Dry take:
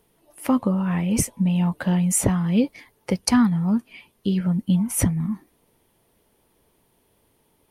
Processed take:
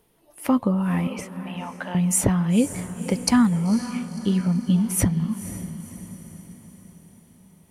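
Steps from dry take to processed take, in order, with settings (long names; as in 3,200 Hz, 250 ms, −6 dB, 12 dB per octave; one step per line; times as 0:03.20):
0:01.07–0:01.95: three-way crossover with the lows and the highs turned down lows −21 dB, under 490 Hz, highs −19 dB, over 3,700 Hz
on a send: feedback delay with all-pass diffusion 516 ms, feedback 51%, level −12 dB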